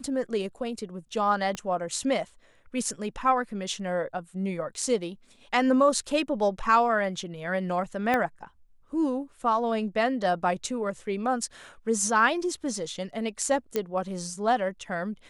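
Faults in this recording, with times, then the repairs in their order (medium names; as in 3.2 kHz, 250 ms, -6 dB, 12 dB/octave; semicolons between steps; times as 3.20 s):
1.55 s: pop -19 dBFS
8.14 s: pop -13 dBFS
13.76 s: pop -13 dBFS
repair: de-click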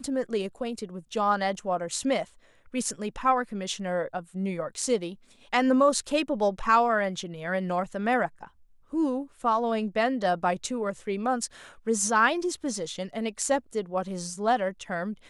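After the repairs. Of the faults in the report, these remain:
1.55 s: pop
8.14 s: pop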